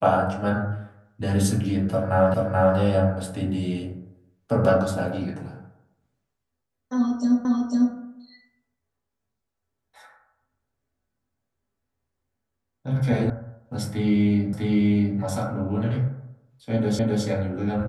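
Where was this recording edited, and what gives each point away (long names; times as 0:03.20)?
0:02.34: the same again, the last 0.43 s
0:07.45: the same again, the last 0.5 s
0:13.30: cut off before it has died away
0:14.53: the same again, the last 0.65 s
0:16.99: the same again, the last 0.26 s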